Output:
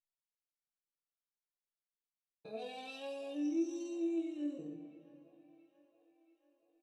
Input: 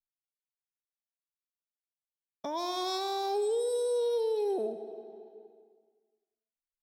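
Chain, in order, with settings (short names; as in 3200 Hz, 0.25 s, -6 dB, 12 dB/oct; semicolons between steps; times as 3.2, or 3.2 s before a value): resonator bank D#3 sus4, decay 0.42 s; pitch shift -6 st; band-limited delay 0.678 s, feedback 60%, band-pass 1100 Hz, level -16 dB; gain +6.5 dB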